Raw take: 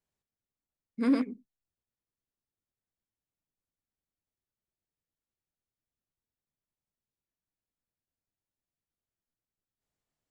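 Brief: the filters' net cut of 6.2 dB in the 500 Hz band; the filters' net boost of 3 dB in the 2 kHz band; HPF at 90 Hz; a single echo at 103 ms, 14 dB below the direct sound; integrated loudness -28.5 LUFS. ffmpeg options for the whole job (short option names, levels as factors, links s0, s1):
-af "highpass=90,equalizer=f=500:t=o:g=-7,equalizer=f=2000:t=o:g=4,aecho=1:1:103:0.2,volume=1.41"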